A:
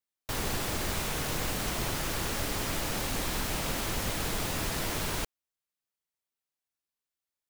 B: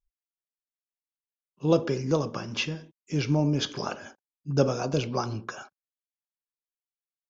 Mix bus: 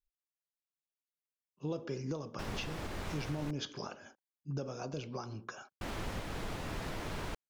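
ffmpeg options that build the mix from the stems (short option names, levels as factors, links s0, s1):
-filter_complex "[0:a]aemphasis=mode=reproduction:type=75kf,adelay=2100,volume=0.562,asplit=3[s0][s1][s2];[s0]atrim=end=3.51,asetpts=PTS-STARTPTS,afade=t=out:st=3.506:d=0.004:c=hsin[s3];[s1]atrim=start=3.51:end=5.81,asetpts=PTS-STARTPTS,volume=0[s4];[s2]atrim=start=5.81,asetpts=PTS-STARTPTS,afade=t=in:d=0.004:c=hsin[s5];[s3][s4][s5]concat=n=3:v=0:a=1[s6];[1:a]volume=0.398[s7];[s6][s7]amix=inputs=2:normalize=0,alimiter=level_in=1.58:limit=0.0631:level=0:latency=1:release=325,volume=0.631"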